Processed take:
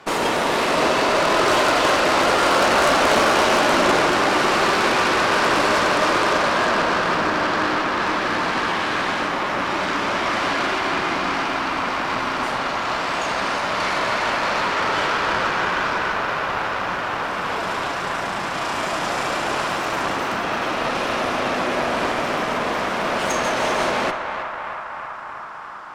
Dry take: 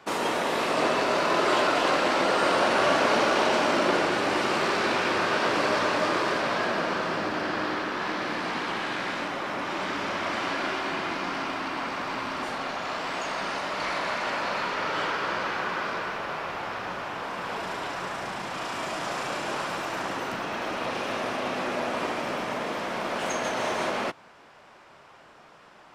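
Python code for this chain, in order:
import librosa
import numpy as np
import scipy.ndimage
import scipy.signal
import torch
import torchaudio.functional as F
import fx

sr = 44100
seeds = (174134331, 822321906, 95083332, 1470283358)

y = fx.echo_banded(x, sr, ms=325, feedback_pct=85, hz=1200.0, wet_db=-6.5)
y = fx.cheby_harmonics(y, sr, harmonics=(5, 6, 8), levels_db=(-18, -12, -11), full_scale_db=-10.0)
y = y * librosa.db_to_amplitude(2.5)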